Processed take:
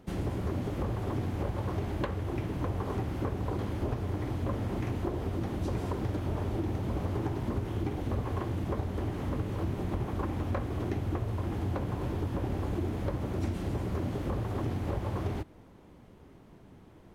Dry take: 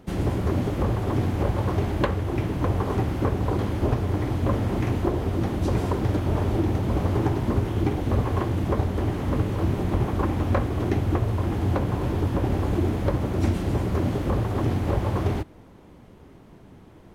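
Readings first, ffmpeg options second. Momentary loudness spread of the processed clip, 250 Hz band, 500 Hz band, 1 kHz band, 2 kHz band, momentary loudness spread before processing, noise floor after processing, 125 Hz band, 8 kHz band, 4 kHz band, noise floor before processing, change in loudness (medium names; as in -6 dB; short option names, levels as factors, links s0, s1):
1 LU, -8.5 dB, -8.5 dB, -8.5 dB, -8.5 dB, 2 LU, -54 dBFS, -8.5 dB, no reading, -8.5 dB, -49 dBFS, -8.5 dB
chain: -af "acompressor=threshold=0.0562:ratio=2,volume=0.531"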